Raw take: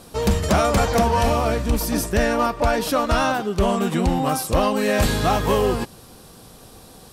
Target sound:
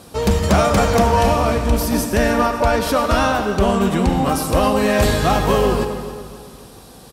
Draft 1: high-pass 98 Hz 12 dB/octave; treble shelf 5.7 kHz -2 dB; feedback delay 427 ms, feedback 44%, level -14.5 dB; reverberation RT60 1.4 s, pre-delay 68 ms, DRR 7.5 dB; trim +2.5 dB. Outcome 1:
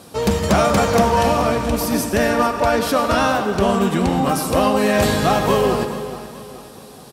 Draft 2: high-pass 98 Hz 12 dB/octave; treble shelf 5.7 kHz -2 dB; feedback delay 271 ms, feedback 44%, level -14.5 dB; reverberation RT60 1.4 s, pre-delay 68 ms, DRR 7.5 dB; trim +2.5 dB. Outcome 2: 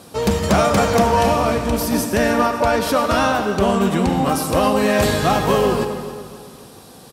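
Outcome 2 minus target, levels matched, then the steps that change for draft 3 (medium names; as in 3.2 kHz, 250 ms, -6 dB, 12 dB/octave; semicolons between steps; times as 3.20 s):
125 Hz band -2.5 dB
change: high-pass 33 Hz 12 dB/octave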